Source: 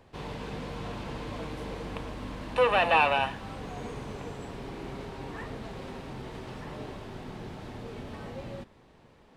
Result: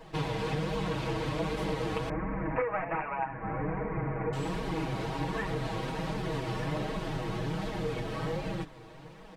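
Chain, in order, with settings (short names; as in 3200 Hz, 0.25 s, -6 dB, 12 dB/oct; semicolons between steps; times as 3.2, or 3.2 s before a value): flange 1.3 Hz, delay 4.3 ms, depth 5 ms, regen +17%; wrapped overs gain 18 dB; compressor 12:1, threshold -40 dBFS, peak gain reduction 18 dB; 2.09–4.33 steep low-pass 2300 Hz 72 dB/oct; comb 6.3 ms, depth 98%; gain +9 dB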